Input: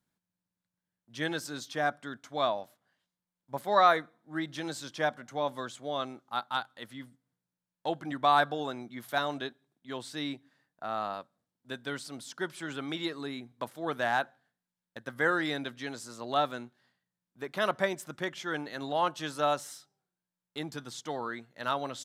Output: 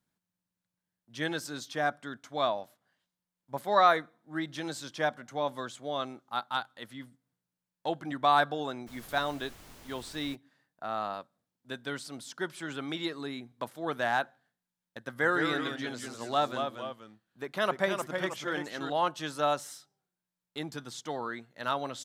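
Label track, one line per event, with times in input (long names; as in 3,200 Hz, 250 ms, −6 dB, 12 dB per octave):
8.860000	10.340000	background noise pink −52 dBFS
15.080000	18.900000	delay with pitch and tempo change per echo 152 ms, each echo −1 semitone, echoes 2, each echo −6 dB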